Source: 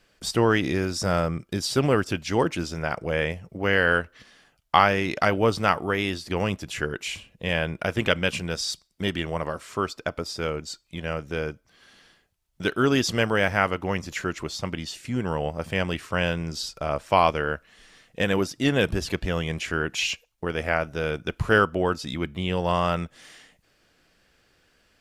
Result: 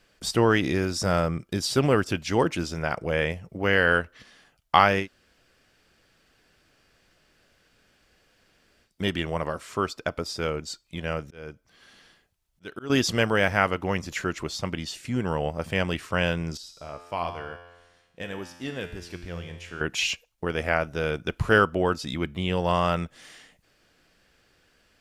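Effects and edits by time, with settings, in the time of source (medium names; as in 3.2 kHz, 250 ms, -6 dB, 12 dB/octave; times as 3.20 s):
5.03–8.87 s: room tone, crossfade 0.10 s
11.22–12.90 s: slow attack 426 ms
16.57–19.81 s: feedback comb 87 Hz, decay 1.2 s, mix 80%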